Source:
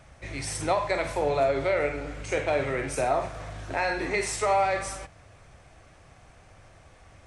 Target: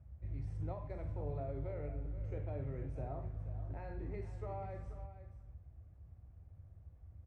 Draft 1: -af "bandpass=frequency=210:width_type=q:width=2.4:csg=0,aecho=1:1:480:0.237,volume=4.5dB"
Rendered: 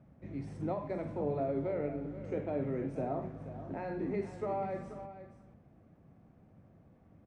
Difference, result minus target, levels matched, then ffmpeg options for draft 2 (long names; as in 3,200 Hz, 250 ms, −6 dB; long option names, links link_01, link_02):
125 Hz band −7.5 dB
-af "bandpass=frequency=73:width_type=q:width=2.4:csg=0,aecho=1:1:480:0.237,volume=4.5dB"